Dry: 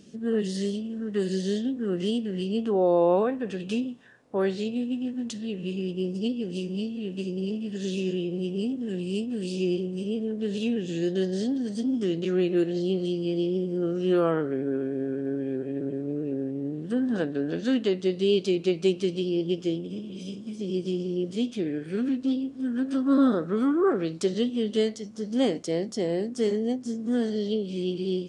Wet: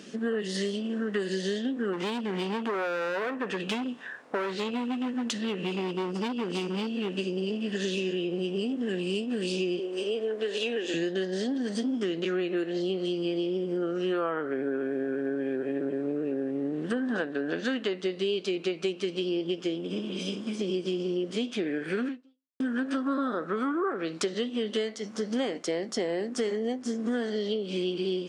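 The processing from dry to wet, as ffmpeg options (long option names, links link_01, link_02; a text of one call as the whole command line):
ffmpeg -i in.wav -filter_complex "[0:a]asplit=3[link_01][link_02][link_03];[link_01]afade=type=out:start_time=1.92:duration=0.02[link_04];[link_02]asoftclip=type=hard:threshold=-27.5dB,afade=type=in:start_time=1.92:duration=0.02,afade=type=out:start_time=7.13:duration=0.02[link_05];[link_03]afade=type=in:start_time=7.13:duration=0.02[link_06];[link_04][link_05][link_06]amix=inputs=3:normalize=0,asettb=1/sr,asplit=3[link_07][link_08][link_09];[link_07]atrim=end=9.794[link_10];[link_08]atrim=start=9.79:end=10.94,asetpts=PTS-STARTPTS,afade=type=in:duration=0.004:curve=qsin,afade=type=out:start_time=1.146:duration=0.004:curve=qsin,highpass=frequency=310:width=0.5412,highpass=frequency=310:width=1.3066[link_11];[link_09]atrim=start=10.936[link_12];[link_10][link_11]acrossfade=duration=0.004:curve1=hsin:curve2=qsin[link_13];[link_13][link_12]acrossfade=duration=0.004:curve1=qsin:curve2=hsin,asplit=2[link_14][link_15];[link_14]atrim=end=22.6,asetpts=PTS-STARTPTS,afade=type=out:start_time=22.06:duration=0.54:curve=exp[link_16];[link_15]atrim=start=22.6,asetpts=PTS-STARTPTS,afade=type=in:duration=0.004:curve=hsin[link_17];[link_16][link_17]concat=n=2:v=0:a=1,highpass=210,equalizer=frequency=1500:width=0.55:gain=11,acompressor=threshold=-32dB:ratio=6,volume=5dB" out.wav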